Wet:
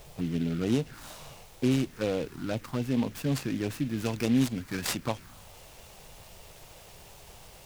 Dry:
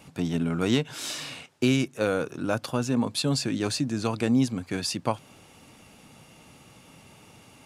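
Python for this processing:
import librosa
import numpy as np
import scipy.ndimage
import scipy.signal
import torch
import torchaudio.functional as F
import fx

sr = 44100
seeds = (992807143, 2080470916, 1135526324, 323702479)

y = fx.high_shelf(x, sr, hz=2200.0, db=fx.steps((0.0, -10.0), (1.7, -3.0), (3.96, 6.5)))
y = fx.dmg_noise_colour(y, sr, seeds[0], colour='pink', level_db=-47.0)
y = fx.env_phaser(y, sr, low_hz=220.0, high_hz=1700.0, full_db=-20.5)
y = fx.noise_mod_delay(y, sr, seeds[1], noise_hz=2500.0, depth_ms=0.047)
y = y * librosa.db_to_amplitude(-2.0)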